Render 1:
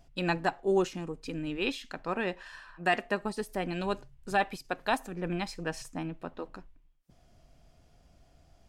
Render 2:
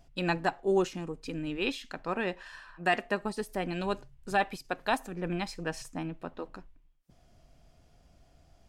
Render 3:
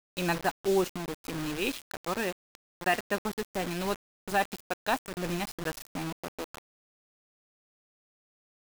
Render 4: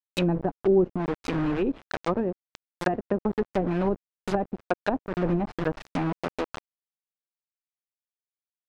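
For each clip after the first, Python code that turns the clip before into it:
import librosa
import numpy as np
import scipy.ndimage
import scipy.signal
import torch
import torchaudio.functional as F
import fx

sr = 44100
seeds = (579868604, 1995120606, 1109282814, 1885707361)

y1 = x
y2 = fx.quant_dither(y1, sr, seeds[0], bits=6, dither='none')
y3 = fx.env_lowpass_down(y2, sr, base_hz=400.0, full_db=-27.0)
y3 = y3 * librosa.db_to_amplitude(8.5)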